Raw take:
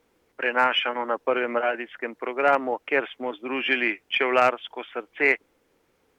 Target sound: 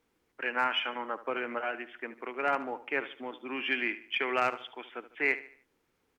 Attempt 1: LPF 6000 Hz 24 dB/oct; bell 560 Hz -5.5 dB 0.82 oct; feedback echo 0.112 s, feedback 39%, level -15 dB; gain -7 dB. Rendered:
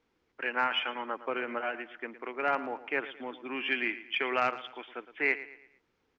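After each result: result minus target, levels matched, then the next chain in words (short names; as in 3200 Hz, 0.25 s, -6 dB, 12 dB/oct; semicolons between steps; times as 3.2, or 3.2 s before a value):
echo 38 ms late; 8000 Hz band -5.0 dB
LPF 6000 Hz 24 dB/oct; bell 560 Hz -5.5 dB 0.82 oct; feedback echo 74 ms, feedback 39%, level -15 dB; gain -7 dB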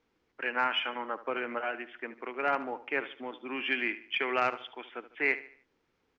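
8000 Hz band -5.0 dB
bell 560 Hz -5.5 dB 0.82 oct; feedback echo 74 ms, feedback 39%, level -15 dB; gain -7 dB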